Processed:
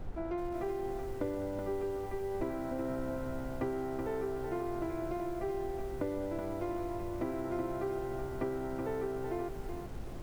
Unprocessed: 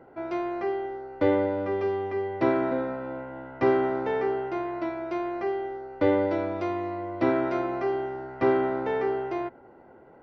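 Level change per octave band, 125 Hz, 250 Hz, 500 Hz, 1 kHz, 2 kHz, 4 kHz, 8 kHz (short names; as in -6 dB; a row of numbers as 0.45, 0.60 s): -3.5 dB, -8.0 dB, -9.5 dB, -11.0 dB, -13.5 dB, -9.0 dB, n/a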